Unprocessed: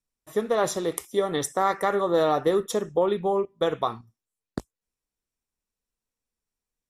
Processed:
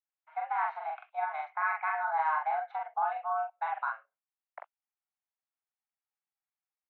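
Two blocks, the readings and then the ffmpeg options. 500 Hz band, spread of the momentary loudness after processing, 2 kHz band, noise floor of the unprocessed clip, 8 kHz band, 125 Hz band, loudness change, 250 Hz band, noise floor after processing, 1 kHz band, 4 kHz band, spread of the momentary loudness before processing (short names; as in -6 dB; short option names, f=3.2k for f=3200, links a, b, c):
-19.0 dB, 12 LU, +1.5 dB, under -85 dBFS, under -40 dB, under -40 dB, -7.5 dB, under -40 dB, under -85 dBFS, -1.5 dB, under -25 dB, 14 LU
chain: -filter_complex "[0:a]asplit=2[a][b];[b]adelay=43,volume=-2dB[c];[a][c]amix=inputs=2:normalize=0,highpass=f=400:t=q:w=0.5412,highpass=f=400:t=q:w=1.307,lowpass=f=2.3k:t=q:w=0.5176,lowpass=f=2.3k:t=q:w=0.7071,lowpass=f=2.3k:t=q:w=1.932,afreqshift=320,volume=-8.5dB"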